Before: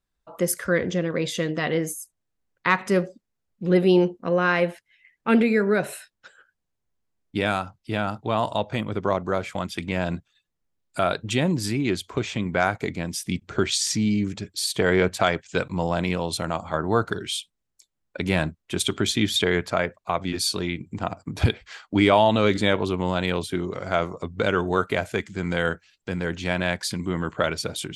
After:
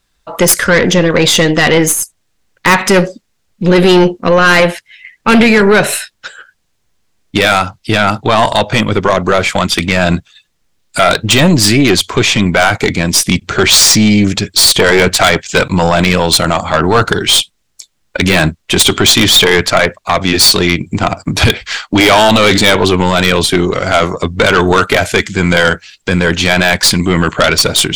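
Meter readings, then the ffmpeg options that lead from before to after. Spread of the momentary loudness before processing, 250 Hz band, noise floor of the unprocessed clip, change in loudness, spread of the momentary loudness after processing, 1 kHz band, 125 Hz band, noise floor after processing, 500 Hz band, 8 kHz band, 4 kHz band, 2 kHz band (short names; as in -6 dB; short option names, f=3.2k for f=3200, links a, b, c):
10 LU, +12.5 dB, -79 dBFS, +14.5 dB, 8 LU, +14.0 dB, +13.0 dB, -62 dBFS, +12.5 dB, +19.5 dB, +19.5 dB, +16.0 dB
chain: -af "equalizer=f=4.4k:w=0.35:g=7.5,aeval=exprs='0.944*(cos(1*acos(clip(val(0)/0.944,-1,1)))-cos(1*PI/2))+0.0473*(cos(4*acos(clip(val(0)/0.944,-1,1)))-cos(4*PI/2))+0.0668*(cos(8*acos(clip(val(0)/0.944,-1,1)))-cos(8*PI/2))':c=same,apsyclip=18.5dB,volume=-2dB"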